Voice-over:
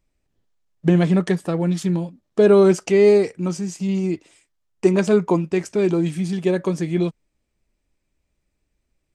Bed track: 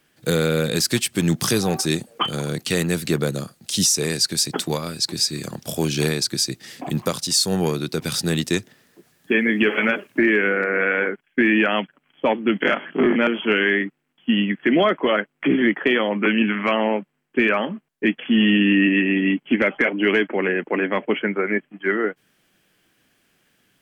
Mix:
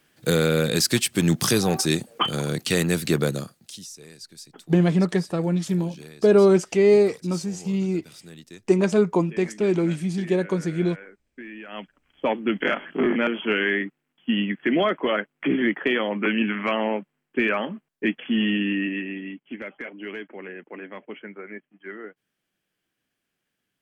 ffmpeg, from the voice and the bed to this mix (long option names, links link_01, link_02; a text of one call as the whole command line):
ffmpeg -i stem1.wav -i stem2.wav -filter_complex "[0:a]adelay=3850,volume=-2.5dB[link_01];[1:a]volume=18dB,afade=type=out:start_time=3.28:duration=0.52:silence=0.0794328,afade=type=in:start_time=11.67:duration=0.42:silence=0.11885,afade=type=out:start_time=18.13:duration=1.18:silence=0.237137[link_02];[link_01][link_02]amix=inputs=2:normalize=0" out.wav